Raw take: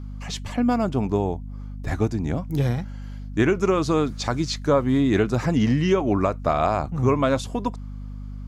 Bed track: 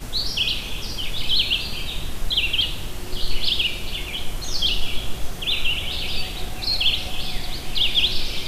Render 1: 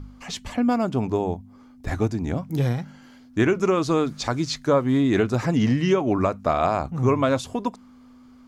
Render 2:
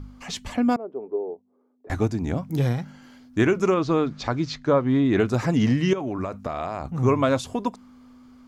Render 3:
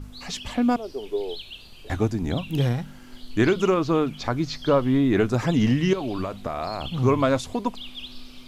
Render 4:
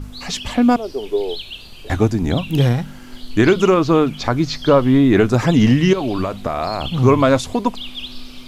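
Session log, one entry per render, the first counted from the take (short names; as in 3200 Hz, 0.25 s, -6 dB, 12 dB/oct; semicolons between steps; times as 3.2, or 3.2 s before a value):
de-hum 50 Hz, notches 4
0.76–1.9 ladder band-pass 460 Hz, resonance 65%; 3.74–5.2 air absorption 140 m; 5.93–6.89 compressor 10:1, threshold -24 dBFS
add bed track -19 dB
gain +7.5 dB; limiter -3 dBFS, peak gain reduction 3 dB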